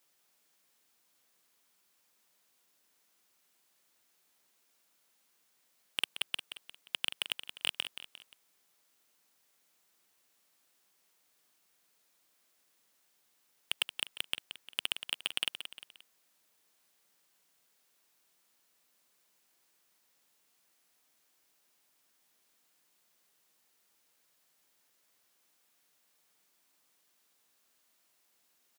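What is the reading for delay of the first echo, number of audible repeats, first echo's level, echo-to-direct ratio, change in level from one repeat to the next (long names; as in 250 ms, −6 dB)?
176 ms, 3, −10.0 dB, −9.0 dB, −7.0 dB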